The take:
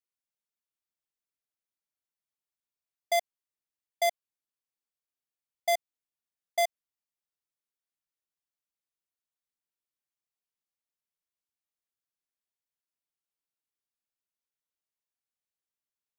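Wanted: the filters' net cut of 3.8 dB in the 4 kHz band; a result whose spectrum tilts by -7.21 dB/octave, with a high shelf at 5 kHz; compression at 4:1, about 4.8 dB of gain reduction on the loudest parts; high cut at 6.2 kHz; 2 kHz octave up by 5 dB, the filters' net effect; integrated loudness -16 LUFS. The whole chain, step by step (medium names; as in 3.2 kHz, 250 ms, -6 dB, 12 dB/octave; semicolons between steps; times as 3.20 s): low-pass 6.2 kHz; peaking EQ 2 kHz +6 dB; peaking EQ 4 kHz -9 dB; treble shelf 5 kHz +7.5 dB; compression 4:1, threshold -27 dBFS; trim +18 dB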